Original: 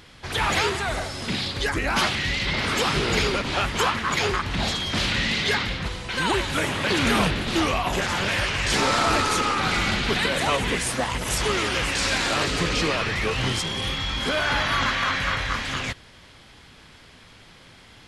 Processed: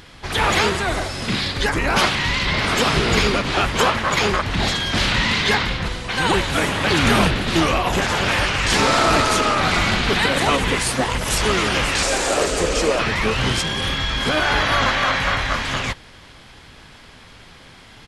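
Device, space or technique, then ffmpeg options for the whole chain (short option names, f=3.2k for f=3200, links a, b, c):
octave pedal: -filter_complex "[0:a]asplit=2[a][b];[b]asetrate=22050,aresample=44100,atempo=2,volume=-6dB[c];[a][c]amix=inputs=2:normalize=0,asettb=1/sr,asplit=3[d][e][f];[d]atrim=end=12.034[g];[e]atrim=start=12.03:end=12.99,asetpts=PTS-STARTPTS,afade=t=in:d=0.004:c=qsin,afade=t=out:st=0.956:d=0.004:c=qsin,equalizer=f=125:t=o:w=1:g=-11,equalizer=f=250:t=o:w=1:g=-4,equalizer=f=500:t=o:w=1:g=8,equalizer=f=1k:t=o:w=1:g=-3,equalizer=f=2k:t=o:w=1:g=-4,equalizer=f=4k:t=o:w=1:g=-6,equalizer=f=8k:t=o:w=1:g=7[h];[f]atrim=start=12.986[i];[g][h]acrossfade=d=0.004:c1=hsin:c2=qsin[j];[j][i]acrossfade=d=0.004:c1=qsin:c2=hsin,volume=4dB"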